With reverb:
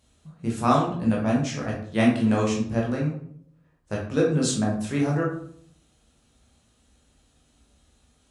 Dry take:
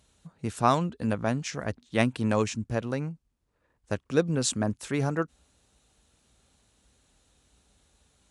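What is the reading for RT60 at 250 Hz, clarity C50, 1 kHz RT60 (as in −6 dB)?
0.80 s, 4.5 dB, 0.60 s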